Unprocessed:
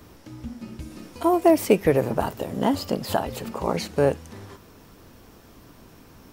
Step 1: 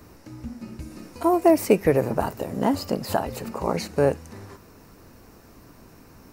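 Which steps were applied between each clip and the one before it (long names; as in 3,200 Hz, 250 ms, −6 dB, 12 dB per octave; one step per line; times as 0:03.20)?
parametric band 3,300 Hz −11 dB 0.27 octaves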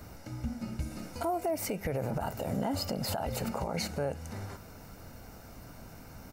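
comb filter 1.4 ms, depth 47%
downward compressor 6 to 1, threshold −23 dBFS, peak gain reduction 12 dB
brickwall limiter −23.5 dBFS, peak gain reduction 10.5 dB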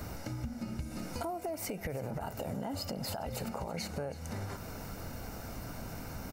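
downward compressor, threshold −42 dBFS, peak gain reduction 13.5 dB
single-tap delay 326 ms −17.5 dB
level +6.5 dB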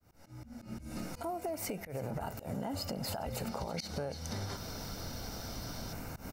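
fade in at the beginning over 0.85 s
gain on a spectral selection 0:03.49–0:05.93, 3,000–6,300 Hz +9 dB
volume swells 111 ms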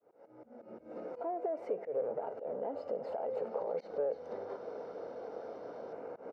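soft clipping −33 dBFS, distortion −17 dB
four-pole ladder band-pass 520 Hz, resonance 65%
level +13.5 dB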